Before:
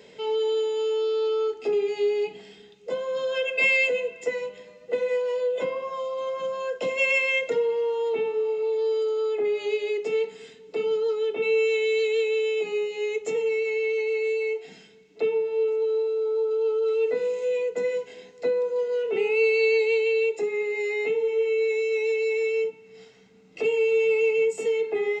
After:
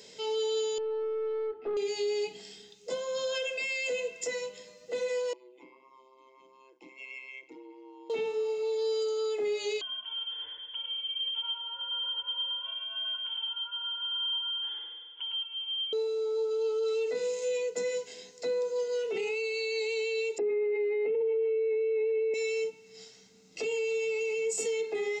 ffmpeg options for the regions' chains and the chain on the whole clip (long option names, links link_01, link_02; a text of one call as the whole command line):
ffmpeg -i in.wav -filter_complex "[0:a]asettb=1/sr,asplit=3[link_01][link_02][link_03];[link_01]atrim=end=0.784[link_04];[link_02]atrim=start=0.78:end=1.77,asetpts=PTS-STARTPTS,afade=type=in:duration=0.004:curve=qsin,afade=type=out:start_time=0.986:duration=0.004:curve=qsin,lowpass=frequency=1800:width=0.5412,lowpass=frequency=1800:width=1.3066,aeval=exprs='(tanh(12.6*val(0)+0.15)-tanh(0.15))/12.6':channel_layout=same[link_05];[link_03]atrim=start=1.766[link_06];[link_04][link_05]acrossfade=duration=0.004:curve1=hsin:curve2=qsin[link_07];[link_07][link_06]acrossfade=duration=0.004:curve1=qsin:curve2=hsin,asettb=1/sr,asplit=3[link_08][link_09][link_10];[link_08]atrim=end=5.334[link_11];[link_09]atrim=start=5.33:end=8.1,asetpts=PTS-STARTPTS,afade=type=in:duration=0.004:curve=qsin,afade=type=out:start_time=2.766:duration=0.004:curve=qsin,equalizer=frequency=3600:width_type=o:width=0.34:gain=-3.5,tremolo=f=130:d=0.75,asplit=3[link_12][link_13][link_14];[link_12]bandpass=frequency=300:width_type=q:width=8,volume=0dB[link_15];[link_13]bandpass=frequency=870:width_type=q:width=8,volume=-6dB[link_16];[link_14]bandpass=frequency=2240:width_type=q:width=8,volume=-9dB[link_17];[link_15][link_16][link_17]amix=inputs=3:normalize=0[link_18];[link_10]atrim=start=8.096[link_19];[link_11][link_18]acrossfade=duration=0.004:curve1=hsin:curve2=qsin[link_20];[link_20][link_19]acrossfade=duration=0.004:curve1=qsin:curve2=hsin,asettb=1/sr,asplit=3[link_21][link_22][link_23];[link_21]atrim=end=9.814[link_24];[link_22]atrim=start=9.81:end=15.93,asetpts=PTS-STARTPTS,afade=type=in:duration=0.004:curve=qsin,afade=type=out:start_time=6.116:duration=0.004:curve=qsin,acompressor=threshold=-37dB:ratio=5:attack=3.2:release=140:knee=1:detection=peak,aecho=1:1:107|214|321|428|535|642|749|856:0.631|0.353|0.198|0.111|0.0621|0.0347|0.0195|0.0109,atrim=end_sample=269892,lowpass=frequency=3100:width_type=q:width=0.5098,lowpass=frequency=3100:width_type=q:width=0.6013,lowpass=frequency=3100:width_type=q:width=0.9,lowpass=frequency=3100:width_type=q:width=2.563,afreqshift=-3600[link_25];[link_23]atrim=start=15.926[link_26];[link_24][link_25]acrossfade=duration=0.004:curve1=hsin:curve2=qsin[link_27];[link_27][link_26]acrossfade=duration=0.004:curve1=qsin:curve2=hsin,asettb=1/sr,asplit=3[link_28][link_29][link_30];[link_28]atrim=end=20.384[link_31];[link_29]atrim=start=20.38:end=22.34,asetpts=PTS-STARTPTS,afade=type=in:duration=0.004:curve=qsin,afade=type=out:start_time=1.956:duration=0.004:curve=qsin,lowpass=frequency=2500:width=0.5412,lowpass=frequency=2500:width=1.3066,equalizer=frequency=360:width=0.8:gain=15[link_32];[link_30]atrim=start=22.336[link_33];[link_31][link_32]acrossfade=duration=0.004:curve1=hsin:curve2=qsin[link_34];[link_34][link_33]acrossfade=duration=0.004:curve1=qsin:curve2=hsin,equalizer=frequency=2700:width_type=o:width=1.7:gain=5,alimiter=limit=-19dB:level=0:latency=1:release=22,highshelf=frequency=3800:width_type=q:width=1.5:gain=12,volume=-5.5dB" out.wav